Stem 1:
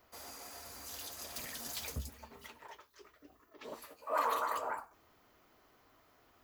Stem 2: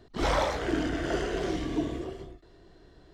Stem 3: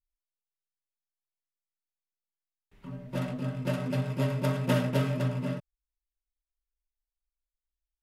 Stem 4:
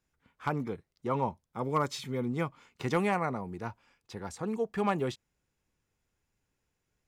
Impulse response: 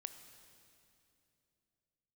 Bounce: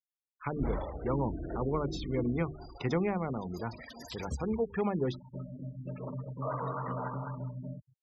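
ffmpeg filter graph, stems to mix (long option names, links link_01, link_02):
-filter_complex "[0:a]highshelf=frequency=4700:gain=-7,aeval=exprs='val(0)+0.000501*(sin(2*PI*50*n/s)+sin(2*PI*2*50*n/s)/2+sin(2*PI*3*50*n/s)/3+sin(2*PI*4*50*n/s)/4+sin(2*PI*5*50*n/s)/5)':channel_layout=same,adelay=2350,volume=1dB,asplit=3[link_01][link_02][link_03];[link_02]volume=-6dB[link_04];[link_03]volume=-7dB[link_05];[1:a]lowshelf=frequency=280:gain=10.5,adelay=400,volume=-15dB,asplit=2[link_06][link_07];[link_07]volume=-8dB[link_08];[2:a]equalizer=frequency=73:width=0.54:gain=9,acompressor=threshold=-24dB:ratio=3,adelay=2200,volume=-13dB,asplit=3[link_09][link_10][link_11];[link_10]volume=-17dB[link_12];[link_11]volume=-24dB[link_13];[3:a]bandreject=frequency=50:width_type=h:width=6,bandreject=frequency=100:width_type=h:width=6,bandreject=frequency=150:width_type=h:width=6,bandreject=frequency=200:width_type=h:width=6,bandreject=frequency=250:width_type=h:width=6,bandreject=frequency=300:width_type=h:width=6,bandreject=frequency=350:width_type=h:width=6,volume=1.5dB,asplit=2[link_14][link_15];[link_15]volume=-22.5dB[link_16];[4:a]atrim=start_sample=2205[link_17];[link_04][link_08][link_12][link_16]amix=inputs=4:normalize=0[link_18];[link_18][link_17]afir=irnorm=-1:irlink=0[link_19];[link_05][link_13]amix=inputs=2:normalize=0,aecho=0:1:204|408|612|816:1|0.29|0.0841|0.0244[link_20];[link_01][link_06][link_09][link_14][link_19][link_20]amix=inputs=6:normalize=0,acrossover=split=490[link_21][link_22];[link_22]acompressor=threshold=-36dB:ratio=10[link_23];[link_21][link_23]amix=inputs=2:normalize=0,afftfilt=real='re*gte(hypot(re,im),0.0112)':imag='im*gte(hypot(re,im),0.0112)':win_size=1024:overlap=0.75"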